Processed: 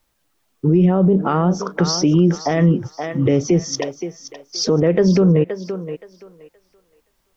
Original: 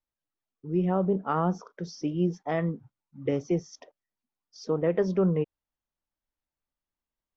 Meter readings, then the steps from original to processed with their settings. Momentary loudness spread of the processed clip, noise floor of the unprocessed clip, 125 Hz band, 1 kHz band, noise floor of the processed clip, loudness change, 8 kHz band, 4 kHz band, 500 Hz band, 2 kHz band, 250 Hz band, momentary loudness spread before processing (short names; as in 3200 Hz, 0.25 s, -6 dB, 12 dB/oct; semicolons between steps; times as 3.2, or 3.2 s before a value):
14 LU, under -85 dBFS, +14.0 dB, +8.0 dB, -67 dBFS, +11.0 dB, n/a, +22.0 dB, +10.0 dB, +11.5 dB, +13.0 dB, 11 LU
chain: dynamic EQ 980 Hz, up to -6 dB, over -39 dBFS, Q 0.81; compressor, threshold -31 dBFS, peak gain reduction 10 dB; thinning echo 0.522 s, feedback 24%, high-pass 410 Hz, level -12 dB; maximiser +30 dB; gain -6 dB